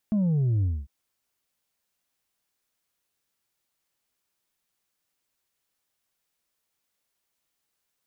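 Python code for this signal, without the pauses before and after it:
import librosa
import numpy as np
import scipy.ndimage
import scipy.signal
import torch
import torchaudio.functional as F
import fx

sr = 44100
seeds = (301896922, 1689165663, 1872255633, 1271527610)

y = fx.sub_drop(sr, level_db=-21, start_hz=220.0, length_s=0.75, drive_db=3.0, fade_s=0.24, end_hz=65.0)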